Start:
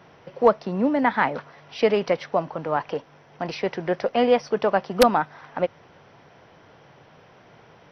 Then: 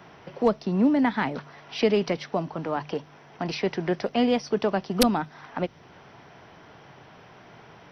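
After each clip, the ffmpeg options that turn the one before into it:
-filter_complex "[0:a]acrossover=split=430|3000[a][b][c];[b]acompressor=threshold=-38dB:ratio=2[d];[a][d][c]amix=inputs=3:normalize=0,equalizer=f=520:w=5.3:g=-7,bandreject=f=50:t=h:w=6,bandreject=f=100:t=h:w=6,bandreject=f=150:t=h:w=6,volume=3dB"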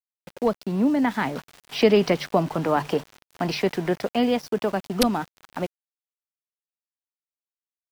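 -af "dynaudnorm=f=390:g=9:m=14dB,aeval=exprs='val(0)*gte(abs(val(0)),0.015)':c=same,volume=-1dB"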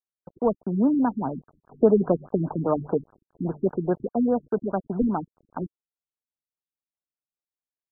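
-af "afftfilt=real='re*lt(b*sr/1024,330*pow(1700/330,0.5+0.5*sin(2*PI*4.9*pts/sr)))':imag='im*lt(b*sr/1024,330*pow(1700/330,0.5+0.5*sin(2*PI*4.9*pts/sr)))':win_size=1024:overlap=0.75"

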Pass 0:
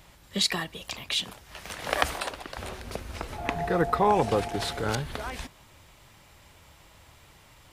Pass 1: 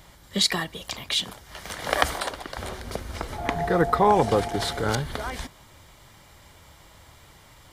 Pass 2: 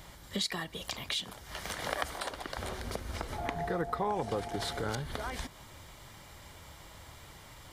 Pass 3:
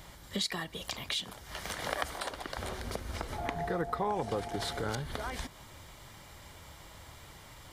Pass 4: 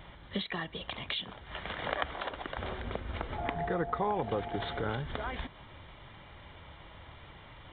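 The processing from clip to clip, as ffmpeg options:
-af "bandreject=f=2.6k:w=6.9,volume=3.5dB"
-af "acompressor=threshold=-36dB:ratio=2.5"
-af anull
-af "aresample=8000,aresample=44100,volume=1dB"

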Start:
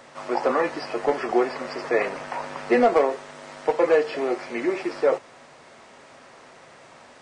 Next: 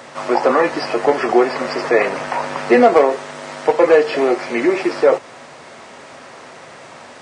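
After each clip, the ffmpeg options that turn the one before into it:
-filter_complex "[0:a]highpass=65,asplit=2[a][b];[b]alimiter=limit=-19dB:level=0:latency=1:release=171,volume=-3dB[c];[a][c]amix=inputs=2:normalize=0,volume=5.5dB"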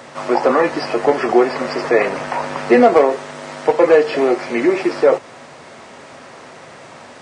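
-af "lowshelf=f=340:g=4,volume=-1dB"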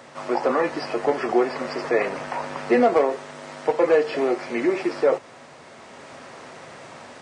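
-af "dynaudnorm=f=360:g=3:m=4.5dB,volume=-7.5dB"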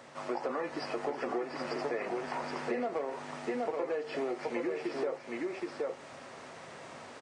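-af "aecho=1:1:772:0.531,acompressor=threshold=-24dB:ratio=6,volume=-7dB"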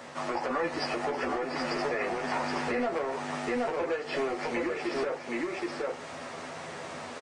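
-filter_complex "[0:a]acrossover=split=1000[a][b];[a]asoftclip=type=tanh:threshold=-36dB[c];[c][b]amix=inputs=2:normalize=0,asplit=2[d][e];[e]adelay=12,volume=-5dB[f];[d][f]amix=inputs=2:normalize=0,volume=6.5dB"

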